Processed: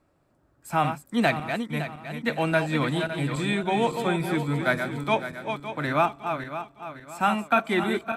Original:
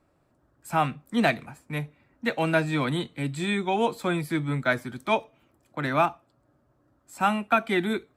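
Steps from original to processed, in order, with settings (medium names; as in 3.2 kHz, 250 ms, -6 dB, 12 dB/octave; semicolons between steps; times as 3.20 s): backward echo that repeats 280 ms, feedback 60%, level -7 dB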